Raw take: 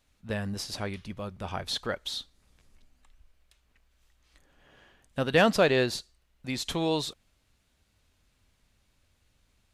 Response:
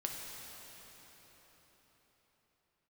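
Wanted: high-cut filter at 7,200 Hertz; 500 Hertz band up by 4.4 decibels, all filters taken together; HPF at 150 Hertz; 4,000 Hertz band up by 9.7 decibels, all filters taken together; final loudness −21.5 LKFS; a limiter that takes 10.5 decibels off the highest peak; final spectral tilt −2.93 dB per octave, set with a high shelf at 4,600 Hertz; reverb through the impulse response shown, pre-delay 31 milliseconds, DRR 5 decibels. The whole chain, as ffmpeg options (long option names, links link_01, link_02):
-filter_complex "[0:a]highpass=150,lowpass=7200,equalizer=frequency=500:width_type=o:gain=5,equalizer=frequency=4000:width_type=o:gain=8,highshelf=frequency=4600:gain=7.5,alimiter=limit=-13.5dB:level=0:latency=1,asplit=2[link_01][link_02];[1:a]atrim=start_sample=2205,adelay=31[link_03];[link_02][link_03]afir=irnorm=-1:irlink=0,volume=-6.5dB[link_04];[link_01][link_04]amix=inputs=2:normalize=0,volume=5dB"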